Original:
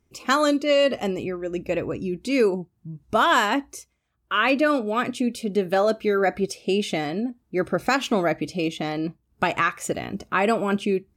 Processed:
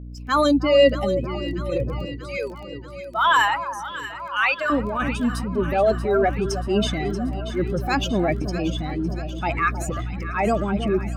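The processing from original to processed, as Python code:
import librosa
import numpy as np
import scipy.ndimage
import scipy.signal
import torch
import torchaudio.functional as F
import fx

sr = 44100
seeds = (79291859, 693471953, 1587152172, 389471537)

y = fx.bin_expand(x, sr, power=2.0)
y = fx.add_hum(y, sr, base_hz=60, snr_db=15)
y = fx.highpass(y, sr, hz=770.0, slope=24, at=(2.05, 4.7))
y = fx.transient(y, sr, attack_db=-8, sustain_db=6)
y = fx.high_shelf(y, sr, hz=4600.0, db=-8.5)
y = fx.echo_alternate(y, sr, ms=317, hz=1200.0, feedback_pct=79, wet_db=-10.0)
y = fx.dmg_crackle(y, sr, seeds[0], per_s=11.0, level_db=-43.0)
y = F.gain(torch.from_numpy(y), 7.5).numpy()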